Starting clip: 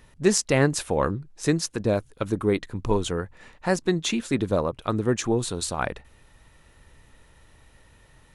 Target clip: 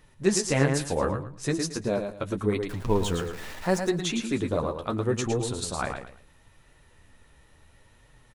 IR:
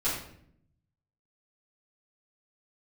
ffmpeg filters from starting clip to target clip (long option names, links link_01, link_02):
-filter_complex "[0:a]asettb=1/sr,asplit=3[link_01][link_02][link_03];[link_01]atrim=end=2.694[link_04];[link_02]atrim=start=2.69:end=3.78,asetpts=PTS-STARTPTS,afade=type=in:duration=0.004:curve=qsin,afade=type=out:start_time=1.086:duration=0.004:curve=qsin,aeval=exprs='val(0)+0.5*0.0224*sgn(val(0))':channel_layout=same[link_05];[link_03]atrim=start=3.776[link_06];[link_04][link_05]acrossfade=duration=0.004:curve1=hsin:curve2=qsin[link_07];[link_07][link_06]acrossfade=duration=0.004:curve1=qsin:curve2=hsin,asplit=2[link_08][link_09];[link_09]aecho=0:1:111|222|333:0.473|0.118|0.0296[link_10];[link_08][link_10]amix=inputs=2:normalize=0,flanger=delay=6.2:depth=9.3:regen=-24:speed=0.74:shape=triangular"